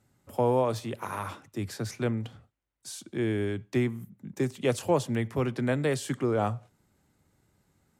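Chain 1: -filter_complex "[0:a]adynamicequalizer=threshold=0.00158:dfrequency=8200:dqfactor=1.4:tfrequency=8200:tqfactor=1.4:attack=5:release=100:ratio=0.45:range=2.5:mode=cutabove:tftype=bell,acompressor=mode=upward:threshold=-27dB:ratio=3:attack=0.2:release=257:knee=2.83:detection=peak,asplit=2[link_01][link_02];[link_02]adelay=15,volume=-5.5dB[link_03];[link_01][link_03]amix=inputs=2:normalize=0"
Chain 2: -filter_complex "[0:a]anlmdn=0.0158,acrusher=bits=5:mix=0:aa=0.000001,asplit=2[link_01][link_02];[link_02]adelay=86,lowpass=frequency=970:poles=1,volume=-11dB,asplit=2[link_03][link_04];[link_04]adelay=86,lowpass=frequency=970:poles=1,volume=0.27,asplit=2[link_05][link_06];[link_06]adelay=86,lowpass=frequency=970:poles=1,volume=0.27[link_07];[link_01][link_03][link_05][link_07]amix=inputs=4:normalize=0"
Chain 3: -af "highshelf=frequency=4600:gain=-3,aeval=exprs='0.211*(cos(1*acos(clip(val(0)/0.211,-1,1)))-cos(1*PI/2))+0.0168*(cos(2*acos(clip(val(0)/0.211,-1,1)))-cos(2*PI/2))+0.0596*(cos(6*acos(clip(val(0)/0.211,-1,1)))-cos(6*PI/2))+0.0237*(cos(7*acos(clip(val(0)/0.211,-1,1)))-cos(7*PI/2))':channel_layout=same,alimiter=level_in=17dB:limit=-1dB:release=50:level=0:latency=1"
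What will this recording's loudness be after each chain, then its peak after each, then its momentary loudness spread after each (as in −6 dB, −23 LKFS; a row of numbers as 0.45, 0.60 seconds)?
−29.0, −29.5, −17.0 LKFS; −12.0, −13.0, −1.0 dBFS; 20, 12, 11 LU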